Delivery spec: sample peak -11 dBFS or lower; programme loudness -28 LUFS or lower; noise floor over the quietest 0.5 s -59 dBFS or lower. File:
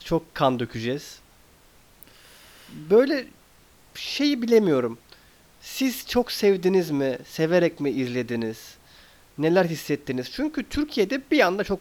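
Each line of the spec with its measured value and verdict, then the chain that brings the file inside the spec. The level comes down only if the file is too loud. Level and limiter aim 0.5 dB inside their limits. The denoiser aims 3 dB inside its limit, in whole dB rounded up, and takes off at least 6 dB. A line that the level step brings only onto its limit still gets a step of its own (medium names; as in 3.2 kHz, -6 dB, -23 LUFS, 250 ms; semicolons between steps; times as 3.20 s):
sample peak -5.0 dBFS: fail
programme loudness -24.0 LUFS: fail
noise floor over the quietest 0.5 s -55 dBFS: fail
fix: trim -4.5 dB; peak limiter -11.5 dBFS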